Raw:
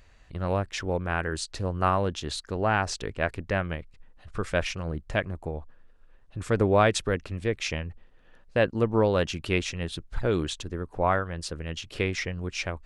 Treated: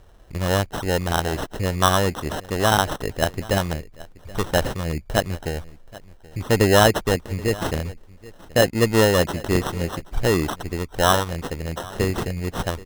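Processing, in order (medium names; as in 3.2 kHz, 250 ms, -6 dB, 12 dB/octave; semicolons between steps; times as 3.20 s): sample-and-hold 19×; delay 778 ms -20.5 dB; trim +6 dB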